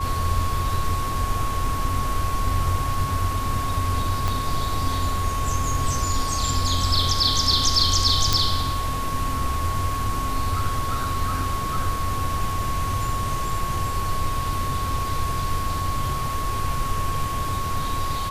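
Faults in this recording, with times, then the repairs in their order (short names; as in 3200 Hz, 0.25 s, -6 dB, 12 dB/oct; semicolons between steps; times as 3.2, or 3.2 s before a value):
tone 1100 Hz -27 dBFS
4.28 pop
8.33 pop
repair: de-click; notch 1100 Hz, Q 30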